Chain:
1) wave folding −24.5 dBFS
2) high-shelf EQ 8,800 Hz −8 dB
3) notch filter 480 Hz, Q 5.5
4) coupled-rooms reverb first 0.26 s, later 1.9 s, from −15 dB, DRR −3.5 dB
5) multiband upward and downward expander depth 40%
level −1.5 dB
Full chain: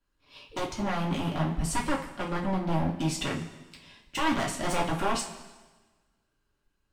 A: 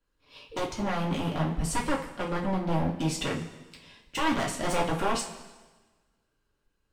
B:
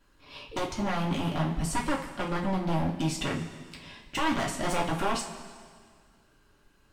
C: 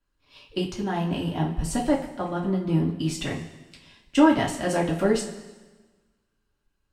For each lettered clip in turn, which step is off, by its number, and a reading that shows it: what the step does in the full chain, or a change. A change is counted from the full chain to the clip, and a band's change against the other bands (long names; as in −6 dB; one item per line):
3, 500 Hz band +2.0 dB
5, change in momentary loudness spread +6 LU
1, change in crest factor +5.0 dB